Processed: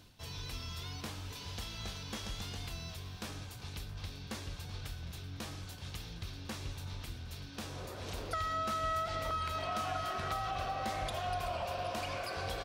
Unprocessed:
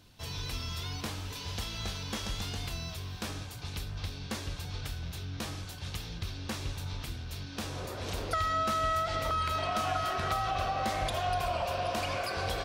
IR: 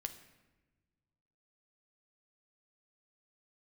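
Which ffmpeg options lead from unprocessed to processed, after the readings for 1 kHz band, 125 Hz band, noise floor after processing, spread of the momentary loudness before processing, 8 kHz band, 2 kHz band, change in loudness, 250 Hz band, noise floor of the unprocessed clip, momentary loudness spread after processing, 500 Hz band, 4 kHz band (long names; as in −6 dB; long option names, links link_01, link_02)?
−5.0 dB, −5.5 dB, −47 dBFS, 9 LU, −5.5 dB, −5.5 dB, −5.0 dB, −5.5 dB, −43 dBFS, 10 LU, −5.0 dB, −5.5 dB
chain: -af "areverse,acompressor=mode=upward:threshold=-37dB:ratio=2.5,areverse,aecho=1:1:380|760|1140|1520|1900:0.15|0.0838|0.0469|0.0263|0.0147,volume=-5.5dB"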